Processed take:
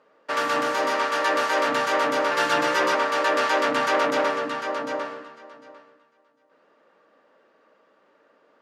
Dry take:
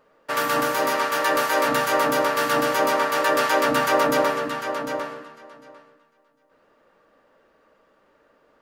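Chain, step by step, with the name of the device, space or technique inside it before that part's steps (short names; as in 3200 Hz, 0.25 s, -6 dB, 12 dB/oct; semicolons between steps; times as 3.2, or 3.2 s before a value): public-address speaker with an overloaded transformer (core saturation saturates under 1500 Hz; BPF 210–6400 Hz); 2.31–2.95 comb 5.7 ms, depth 91%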